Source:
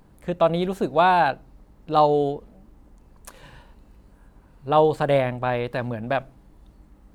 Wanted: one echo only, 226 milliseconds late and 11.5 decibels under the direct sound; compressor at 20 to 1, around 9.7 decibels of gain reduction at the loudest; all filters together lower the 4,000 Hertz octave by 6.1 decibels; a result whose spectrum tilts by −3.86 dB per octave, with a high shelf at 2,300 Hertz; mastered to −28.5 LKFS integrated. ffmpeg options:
ffmpeg -i in.wav -af "highshelf=frequency=2300:gain=-3.5,equalizer=frequency=4000:width_type=o:gain=-4.5,acompressor=threshold=-22dB:ratio=20,aecho=1:1:226:0.266" out.wav

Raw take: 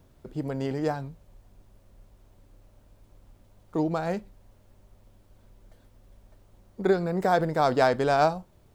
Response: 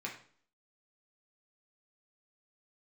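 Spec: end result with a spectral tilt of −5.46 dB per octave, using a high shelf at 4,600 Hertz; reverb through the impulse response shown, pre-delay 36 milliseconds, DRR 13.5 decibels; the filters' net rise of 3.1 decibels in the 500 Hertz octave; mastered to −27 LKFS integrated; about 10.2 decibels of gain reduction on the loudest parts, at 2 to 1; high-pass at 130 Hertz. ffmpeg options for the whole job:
-filter_complex "[0:a]highpass=130,equalizer=frequency=500:width_type=o:gain=4,highshelf=frequency=4600:gain=4,acompressor=threshold=-34dB:ratio=2,asplit=2[link_01][link_02];[1:a]atrim=start_sample=2205,adelay=36[link_03];[link_02][link_03]afir=irnorm=-1:irlink=0,volume=-15dB[link_04];[link_01][link_04]amix=inputs=2:normalize=0,volume=6dB"

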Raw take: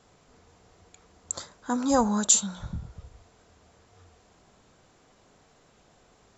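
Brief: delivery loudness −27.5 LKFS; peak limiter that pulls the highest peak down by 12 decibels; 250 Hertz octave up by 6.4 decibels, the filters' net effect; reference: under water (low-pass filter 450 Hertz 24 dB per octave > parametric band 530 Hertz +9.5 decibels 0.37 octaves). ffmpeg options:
ffmpeg -i in.wav -af "equalizer=frequency=250:width_type=o:gain=7,alimiter=limit=-17dB:level=0:latency=1,lowpass=frequency=450:width=0.5412,lowpass=frequency=450:width=1.3066,equalizer=frequency=530:width_type=o:width=0.37:gain=9.5" out.wav

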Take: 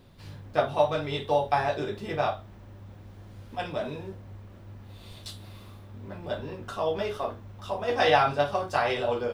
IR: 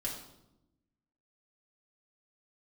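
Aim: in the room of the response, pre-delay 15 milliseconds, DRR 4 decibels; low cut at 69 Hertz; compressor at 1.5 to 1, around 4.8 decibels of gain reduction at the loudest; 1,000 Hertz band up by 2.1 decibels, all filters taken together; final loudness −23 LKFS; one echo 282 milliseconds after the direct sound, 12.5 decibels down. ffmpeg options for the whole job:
-filter_complex "[0:a]highpass=69,equalizer=frequency=1000:width_type=o:gain=3,acompressor=threshold=-29dB:ratio=1.5,aecho=1:1:282:0.237,asplit=2[link_01][link_02];[1:a]atrim=start_sample=2205,adelay=15[link_03];[link_02][link_03]afir=irnorm=-1:irlink=0,volume=-5.5dB[link_04];[link_01][link_04]amix=inputs=2:normalize=0,volume=5.5dB"

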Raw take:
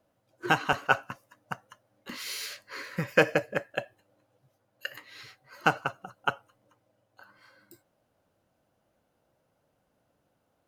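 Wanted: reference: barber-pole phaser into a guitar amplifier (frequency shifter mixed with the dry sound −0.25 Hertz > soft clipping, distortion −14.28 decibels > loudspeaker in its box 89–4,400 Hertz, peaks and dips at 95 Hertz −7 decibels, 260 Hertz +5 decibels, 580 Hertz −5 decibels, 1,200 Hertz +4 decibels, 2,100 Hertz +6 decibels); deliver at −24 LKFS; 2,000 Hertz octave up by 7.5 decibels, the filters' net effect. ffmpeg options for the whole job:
ffmpeg -i in.wav -filter_complex "[0:a]equalizer=frequency=2000:width_type=o:gain=8,asplit=2[link_01][link_02];[link_02]afreqshift=-0.25[link_03];[link_01][link_03]amix=inputs=2:normalize=1,asoftclip=threshold=-13.5dB,highpass=89,equalizer=frequency=95:width_type=q:width=4:gain=-7,equalizer=frequency=260:width_type=q:width=4:gain=5,equalizer=frequency=580:width_type=q:width=4:gain=-5,equalizer=frequency=1200:width_type=q:width=4:gain=4,equalizer=frequency=2100:width_type=q:width=4:gain=6,lowpass=frequency=4400:width=0.5412,lowpass=frequency=4400:width=1.3066,volume=6dB" out.wav

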